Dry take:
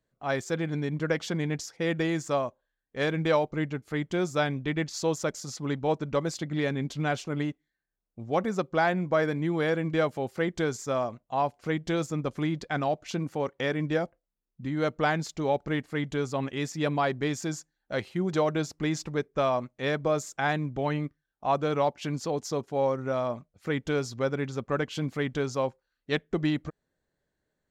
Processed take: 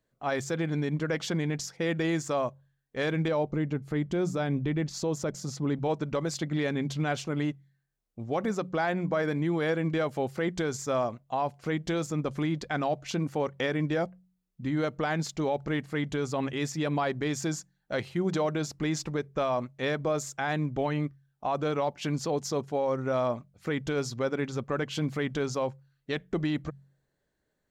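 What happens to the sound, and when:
3.28–5.79 s: tilt shelf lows +4.5 dB, about 750 Hz
whole clip: de-hum 45.73 Hz, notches 4; peak limiter -21.5 dBFS; trim +2 dB

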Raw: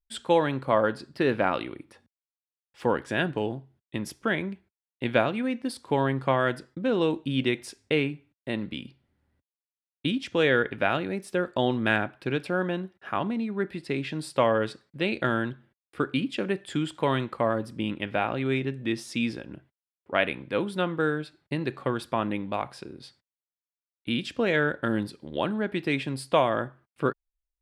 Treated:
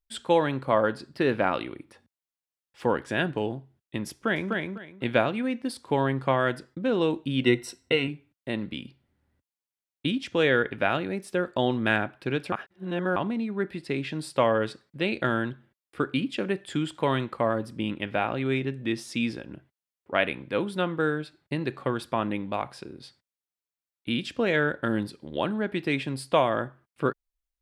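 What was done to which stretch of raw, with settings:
4.11–4.52 s: echo throw 250 ms, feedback 20%, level -3 dB
7.44–8.08 s: rippled EQ curve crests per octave 2, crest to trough 13 dB
12.52–13.16 s: reverse

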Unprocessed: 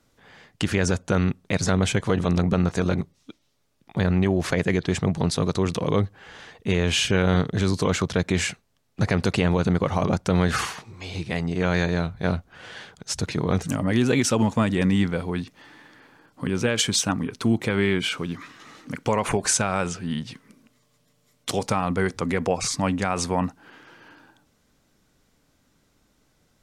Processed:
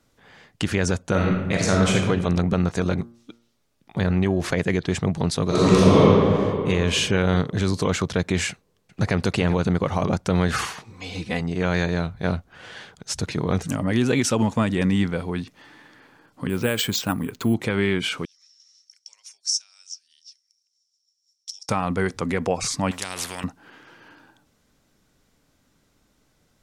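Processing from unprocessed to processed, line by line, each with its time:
1.10–1.96 s: reverb throw, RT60 1.1 s, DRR -1 dB
2.93–4.49 s: de-hum 117 Hz, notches 14
5.46–5.98 s: reverb throw, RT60 2.7 s, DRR -10.5 dB
8.50–9.16 s: echo throw 390 ms, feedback 10%, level -14 dB
10.90–11.41 s: comb 4 ms
16.49–17.54 s: careless resampling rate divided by 4×, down filtered, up hold
18.25–21.69 s: ladder band-pass 5.6 kHz, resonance 90%
22.91–23.44 s: spectrum-flattening compressor 4:1

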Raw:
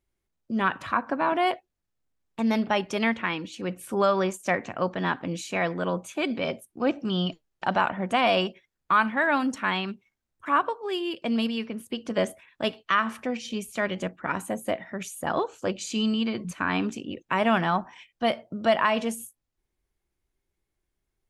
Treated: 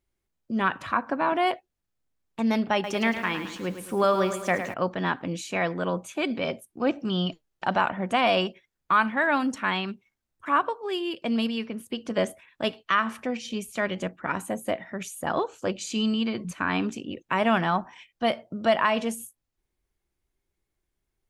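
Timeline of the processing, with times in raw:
2.73–4.74 s: bit-crushed delay 108 ms, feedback 55%, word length 8-bit, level -9 dB

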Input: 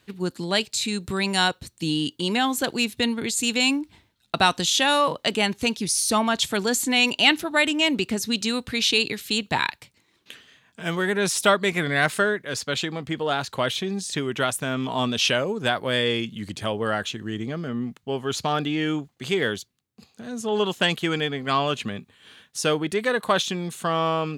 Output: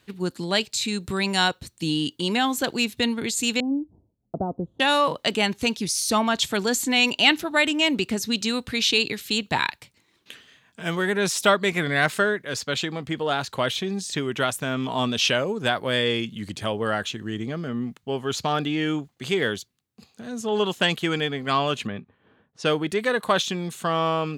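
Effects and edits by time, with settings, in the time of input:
3.60–4.80 s: inverse Chebyshev low-pass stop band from 2.1 kHz, stop band 60 dB
21.87–22.79 s: level-controlled noise filter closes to 670 Hz, open at -20.5 dBFS
whole clip: dynamic bell 9.7 kHz, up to -7 dB, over -49 dBFS, Q 4.4

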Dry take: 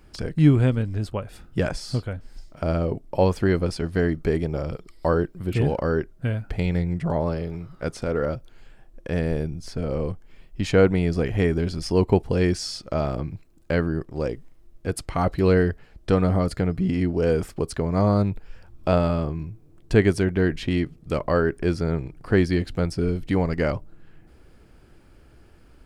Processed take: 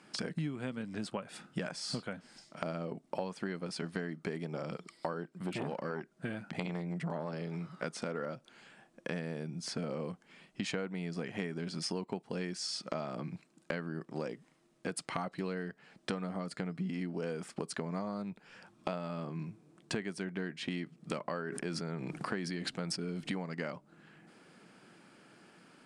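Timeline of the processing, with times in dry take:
5.23–7.33 s: transformer saturation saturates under 390 Hz
21.28–23.31 s: decay stretcher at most 29 dB/s
whole clip: elliptic band-pass 180–9300 Hz, stop band 40 dB; peaking EQ 390 Hz -6 dB 1.7 oct; compression 12:1, threshold -36 dBFS; trim +2.5 dB

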